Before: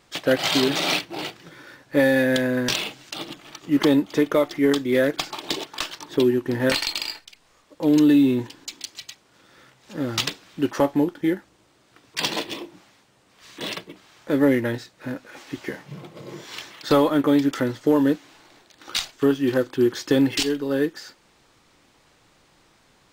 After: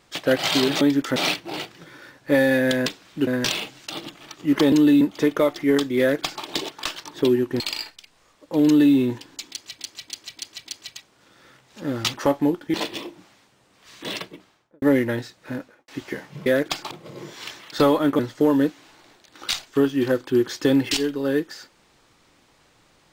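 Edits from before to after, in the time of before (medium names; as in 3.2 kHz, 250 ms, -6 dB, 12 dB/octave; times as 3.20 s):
4.94–5.39 s: copy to 16.02 s
6.55–6.89 s: delete
7.94–8.23 s: copy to 3.96 s
8.79–9.08 s: loop, 5 plays
10.27–10.68 s: move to 2.51 s
11.28–12.30 s: delete
13.83–14.38 s: studio fade out
15.13–15.44 s: studio fade out
17.30–17.65 s: move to 0.81 s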